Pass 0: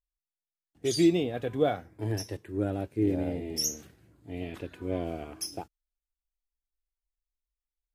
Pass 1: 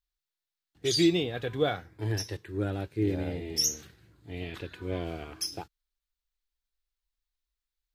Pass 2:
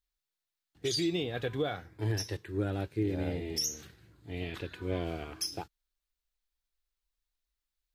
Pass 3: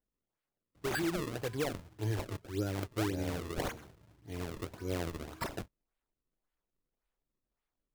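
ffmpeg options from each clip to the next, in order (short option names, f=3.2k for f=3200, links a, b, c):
-af "equalizer=f=250:t=o:w=0.67:g=-7,equalizer=f=630:t=o:w=0.67:g=-6,equalizer=f=1.6k:t=o:w=0.67:g=3,equalizer=f=4k:t=o:w=0.67:g=7,equalizer=f=10k:t=o:w=0.67:g=-4,volume=2dB"
-af "alimiter=limit=-22dB:level=0:latency=1:release=176"
-af "acrusher=samples=33:mix=1:aa=0.000001:lfo=1:lforange=52.8:lforate=1.8,volume=-2.5dB"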